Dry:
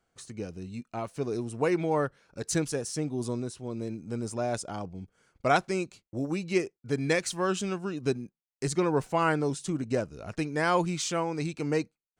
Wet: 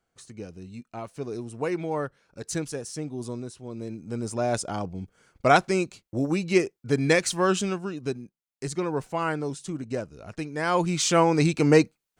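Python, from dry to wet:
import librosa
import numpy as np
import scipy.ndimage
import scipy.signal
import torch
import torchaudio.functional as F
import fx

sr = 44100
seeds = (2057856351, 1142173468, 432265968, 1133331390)

y = fx.gain(x, sr, db=fx.line((3.66, -2.0), (4.6, 5.5), (7.56, 5.5), (8.1, -2.0), (10.56, -2.0), (11.22, 10.5)))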